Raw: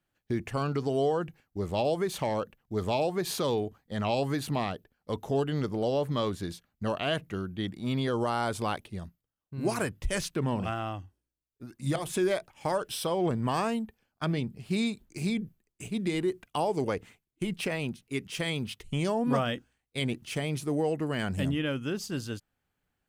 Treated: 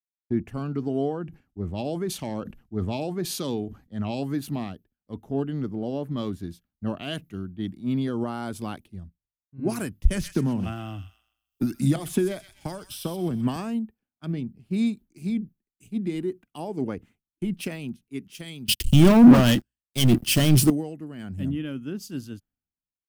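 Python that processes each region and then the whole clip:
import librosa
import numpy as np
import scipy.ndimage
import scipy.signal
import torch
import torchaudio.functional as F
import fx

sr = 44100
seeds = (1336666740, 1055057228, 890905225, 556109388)

y = fx.chain(x, sr, fx.lowpass(hz=11000.0, slope=12),
    fx.sustainer(db_per_s=120.0), at=(1.2, 4.22))
y = fx.chain(y, sr, fx.echo_wet_highpass(ms=126, feedback_pct=35, hz=1800.0, wet_db=-7),
    fx.band_squash(depth_pct=100), at=(10.07, 13.56))
y = fx.chain(y, sr, fx.ripple_eq(per_octave=1.3, db=6),
    fx.leveller(passes=5), at=(18.68, 20.7))
y = fx.graphic_eq_10(y, sr, hz=(125, 250, 500, 1000, 2000, 4000, 8000), db=(-4, 4, -9, -8, -7, -6, -7))
y = fx.rider(y, sr, range_db=4, speed_s=2.0)
y = fx.band_widen(y, sr, depth_pct=100)
y = y * 10.0 ** (1.5 / 20.0)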